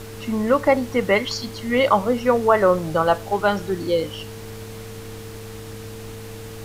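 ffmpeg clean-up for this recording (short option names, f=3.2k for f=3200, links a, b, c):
-af "adeclick=t=4,bandreject=f=106:t=h:w=4,bandreject=f=212:t=h:w=4,bandreject=f=318:t=h:w=4,bandreject=f=450:w=30,afftdn=nr=29:nf=-36"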